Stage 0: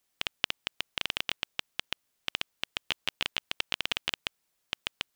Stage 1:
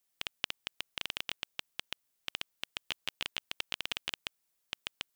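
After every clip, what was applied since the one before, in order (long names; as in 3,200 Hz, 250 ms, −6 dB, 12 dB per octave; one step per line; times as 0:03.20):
high-shelf EQ 7,200 Hz +7 dB
level −6.5 dB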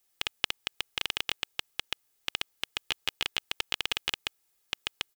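comb filter 2.4 ms, depth 42%
level +5.5 dB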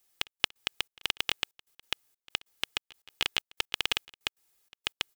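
gate pattern "xxx..x.x" 189 BPM −24 dB
level +2 dB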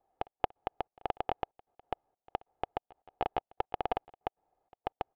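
low-pass with resonance 730 Hz, resonance Q 5
level +3 dB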